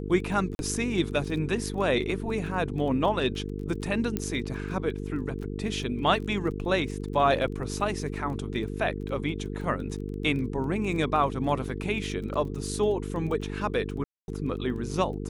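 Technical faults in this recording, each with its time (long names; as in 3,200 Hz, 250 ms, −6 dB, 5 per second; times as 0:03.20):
mains buzz 50 Hz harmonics 9 −34 dBFS
surface crackle 17 per second −36 dBFS
0:00.55–0:00.59: drop-out 41 ms
0:04.17: click −14 dBFS
0:14.04–0:14.28: drop-out 241 ms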